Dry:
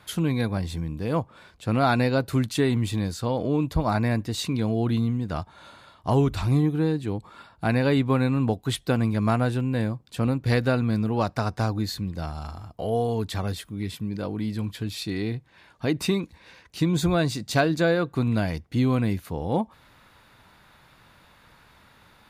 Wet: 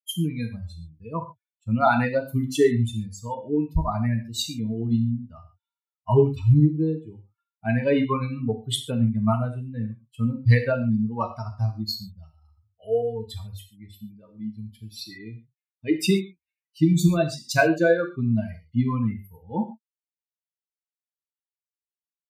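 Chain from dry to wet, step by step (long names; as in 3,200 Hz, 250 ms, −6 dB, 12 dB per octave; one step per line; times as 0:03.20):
spectral dynamics exaggerated over time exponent 3
reverb whose tail is shaped and stops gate 160 ms falling, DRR 4 dB
level +7 dB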